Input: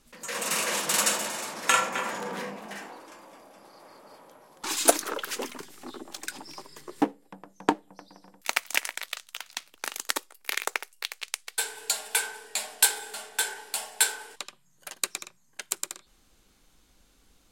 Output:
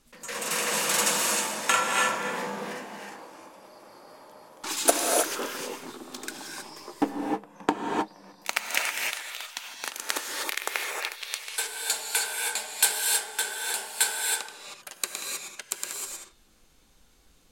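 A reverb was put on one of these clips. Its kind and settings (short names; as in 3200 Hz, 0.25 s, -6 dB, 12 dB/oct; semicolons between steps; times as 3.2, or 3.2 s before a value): non-linear reverb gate 0.34 s rising, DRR -0.5 dB; gain -1.5 dB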